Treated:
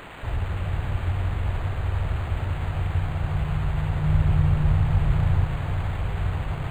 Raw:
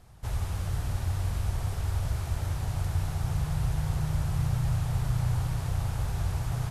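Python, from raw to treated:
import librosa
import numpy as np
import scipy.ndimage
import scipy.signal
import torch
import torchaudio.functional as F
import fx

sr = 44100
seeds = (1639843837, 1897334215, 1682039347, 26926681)

p1 = fx.hum_notches(x, sr, base_hz=60, count=2)
p2 = fx.quant_dither(p1, sr, seeds[0], bits=6, dither='triangular')
p3 = p1 + (p2 * 10.0 ** (-4.0 / 20.0))
p4 = fx.low_shelf(p3, sr, hz=410.0, db=5.5, at=(4.04, 5.45))
y = np.interp(np.arange(len(p4)), np.arange(len(p4))[::8], p4[::8])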